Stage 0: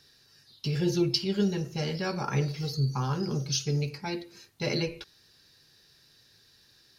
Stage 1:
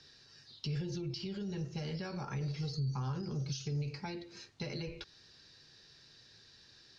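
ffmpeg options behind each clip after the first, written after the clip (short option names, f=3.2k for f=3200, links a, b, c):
-filter_complex "[0:a]lowpass=f=6.6k:w=0.5412,lowpass=f=6.6k:w=1.3066,alimiter=level_in=1dB:limit=-24dB:level=0:latency=1:release=36,volume=-1dB,acrossover=split=120[a][b];[b]acompressor=threshold=-42dB:ratio=4[c];[a][c]amix=inputs=2:normalize=0,volume=1dB"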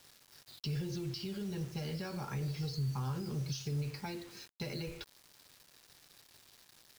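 -af "acrusher=bits=8:mix=0:aa=0.000001"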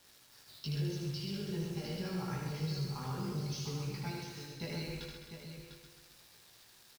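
-filter_complex "[0:a]asplit=2[a][b];[b]aecho=0:1:131|262|393|524|655|786|917:0.501|0.271|0.146|0.0789|0.0426|0.023|0.0124[c];[a][c]amix=inputs=2:normalize=0,flanger=delay=16.5:depth=3.7:speed=0.48,asplit=2[d][e];[e]aecho=0:1:77|700:0.631|0.376[f];[d][f]amix=inputs=2:normalize=0,volume=1dB"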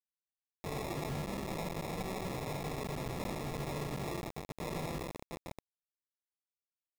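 -af "acrusher=samples=29:mix=1:aa=0.000001,aeval=exprs='0.0119*(abs(mod(val(0)/0.0119+3,4)-2)-1)':c=same,acrusher=bits=6:mix=0:aa=0.000001,volume=2.5dB"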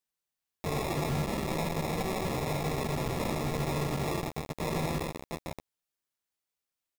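-filter_complex "[0:a]asplit=2[a][b];[b]adelay=13,volume=-10dB[c];[a][c]amix=inputs=2:normalize=0,volume=6.5dB"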